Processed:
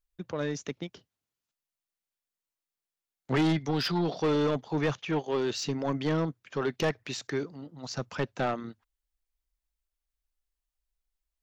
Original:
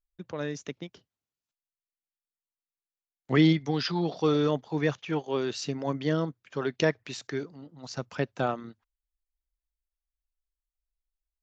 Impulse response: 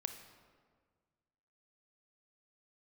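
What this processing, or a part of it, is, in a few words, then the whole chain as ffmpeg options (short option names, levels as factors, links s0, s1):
saturation between pre-emphasis and de-emphasis: -af "highshelf=f=5100:g=6.5,asoftclip=type=tanh:threshold=0.0596,highshelf=f=5100:g=-6.5,volume=1.41"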